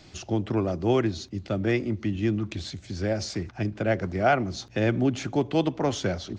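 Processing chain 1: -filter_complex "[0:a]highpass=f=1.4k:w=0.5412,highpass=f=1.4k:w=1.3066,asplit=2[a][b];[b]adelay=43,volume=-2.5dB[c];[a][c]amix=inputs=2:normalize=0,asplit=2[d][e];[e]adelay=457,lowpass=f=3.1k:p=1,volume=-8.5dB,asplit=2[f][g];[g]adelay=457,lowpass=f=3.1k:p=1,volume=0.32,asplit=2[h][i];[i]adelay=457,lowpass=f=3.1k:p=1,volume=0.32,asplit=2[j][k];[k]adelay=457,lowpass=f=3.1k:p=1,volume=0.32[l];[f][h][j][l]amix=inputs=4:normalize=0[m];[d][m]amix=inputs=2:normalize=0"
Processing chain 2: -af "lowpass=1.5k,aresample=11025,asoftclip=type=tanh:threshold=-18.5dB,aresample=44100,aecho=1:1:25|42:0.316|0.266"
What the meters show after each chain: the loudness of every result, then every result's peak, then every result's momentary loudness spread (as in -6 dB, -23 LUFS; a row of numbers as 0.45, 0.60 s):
-35.5, -28.5 LUFS; -13.5, -15.0 dBFS; 11, 7 LU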